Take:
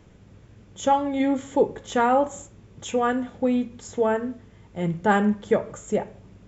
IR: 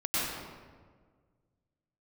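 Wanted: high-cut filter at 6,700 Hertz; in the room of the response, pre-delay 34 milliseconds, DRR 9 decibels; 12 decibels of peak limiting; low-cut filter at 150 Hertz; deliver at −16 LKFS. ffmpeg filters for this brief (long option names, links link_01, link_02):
-filter_complex "[0:a]highpass=150,lowpass=6700,alimiter=limit=-18dB:level=0:latency=1,asplit=2[link_01][link_02];[1:a]atrim=start_sample=2205,adelay=34[link_03];[link_02][link_03]afir=irnorm=-1:irlink=0,volume=-18.5dB[link_04];[link_01][link_04]amix=inputs=2:normalize=0,volume=13dB"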